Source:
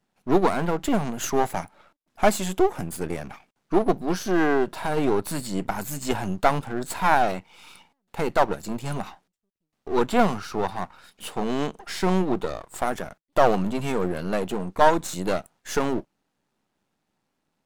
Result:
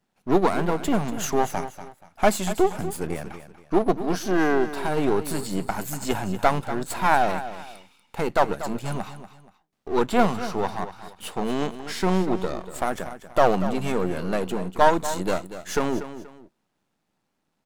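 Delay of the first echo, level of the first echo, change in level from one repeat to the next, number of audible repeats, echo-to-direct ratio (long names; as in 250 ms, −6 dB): 239 ms, −12.5 dB, −10.0 dB, 2, −12.0 dB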